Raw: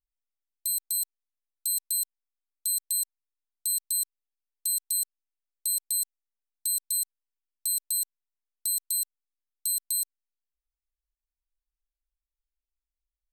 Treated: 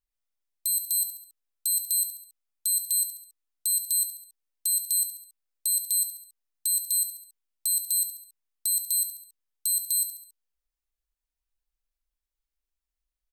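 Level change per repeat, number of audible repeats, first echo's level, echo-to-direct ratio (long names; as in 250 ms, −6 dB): −6.0 dB, 4, −10.0 dB, −9.0 dB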